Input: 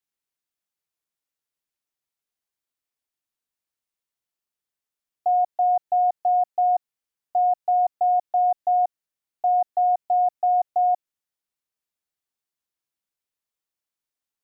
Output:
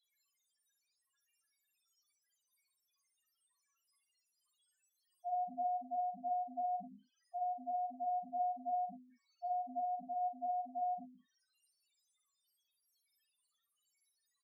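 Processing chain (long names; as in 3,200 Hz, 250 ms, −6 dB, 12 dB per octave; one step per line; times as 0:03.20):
noise gate −24 dBFS, range −23 dB
mains-hum notches 50/100/150/200/250/300 Hz
treble cut that deepens with the level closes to 440 Hz, closed at −20.5 dBFS
drawn EQ curve 450 Hz 0 dB, 710 Hz −18 dB, 1,000 Hz +11 dB
power curve on the samples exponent 0.35
spectral peaks only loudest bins 1
low shelf with overshoot 730 Hz +11.5 dB, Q 3
tuned comb filter 560 Hz, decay 0.31 s, mix 80%
on a send: ambience of single reflections 54 ms −6.5 dB, 67 ms −11.5 dB
on the sum: amplitude modulation by smooth noise, depth 55%
level +12.5 dB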